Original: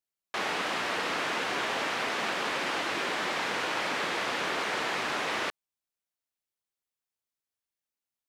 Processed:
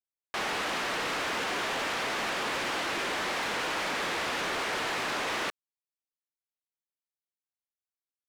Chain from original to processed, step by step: sample leveller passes 3; gain -7.5 dB

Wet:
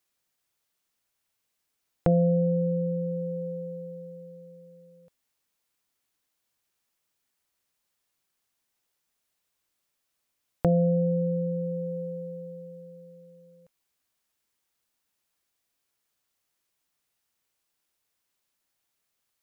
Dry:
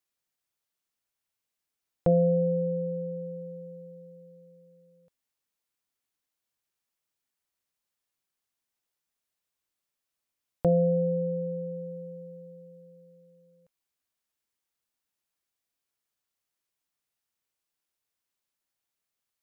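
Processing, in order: dynamic EQ 540 Hz, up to -5 dB, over -39 dBFS; in parallel at +1 dB: compressor, threshold -32 dBFS, peak gain reduction 11 dB

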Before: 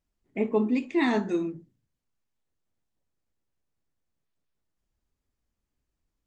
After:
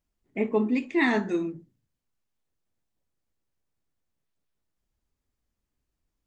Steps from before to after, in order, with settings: dynamic EQ 1900 Hz, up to +6 dB, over -45 dBFS, Q 1.9

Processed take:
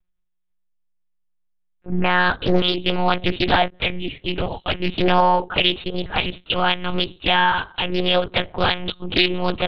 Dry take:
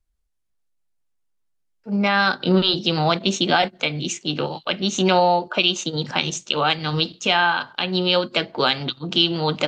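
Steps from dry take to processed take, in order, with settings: monotone LPC vocoder at 8 kHz 180 Hz; Doppler distortion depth 0.58 ms; gain +1.5 dB

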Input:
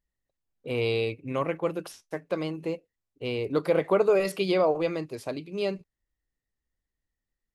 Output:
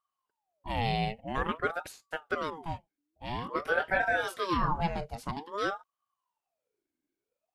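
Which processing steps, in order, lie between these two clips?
2.5–4.79 chorus voices 6, 1.5 Hz, delay 22 ms, depth 3 ms; ring modulator with a swept carrier 720 Hz, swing 60%, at 0.5 Hz

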